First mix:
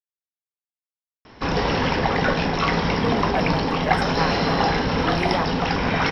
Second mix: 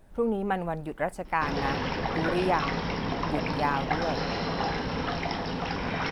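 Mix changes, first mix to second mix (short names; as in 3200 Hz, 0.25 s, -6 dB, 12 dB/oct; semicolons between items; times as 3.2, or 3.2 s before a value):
speech: entry -2.85 s; background -9.0 dB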